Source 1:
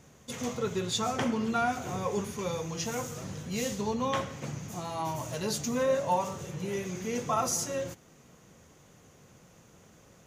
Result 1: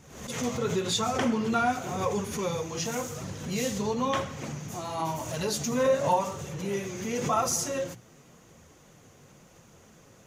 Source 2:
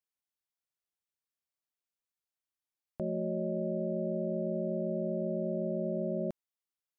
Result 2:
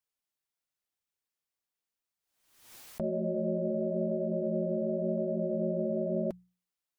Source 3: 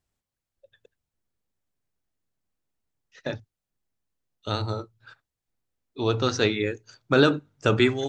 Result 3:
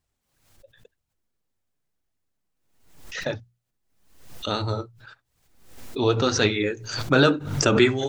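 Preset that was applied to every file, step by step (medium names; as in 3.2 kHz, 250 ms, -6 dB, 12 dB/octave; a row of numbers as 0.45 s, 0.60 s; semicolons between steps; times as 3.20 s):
flange 0.93 Hz, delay 0.7 ms, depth 8.7 ms, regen -40%; hum notches 60/120/180 Hz; swell ahead of each attack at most 72 dB/s; trim +6 dB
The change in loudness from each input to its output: +2.5 LU, +2.0 LU, +2.0 LU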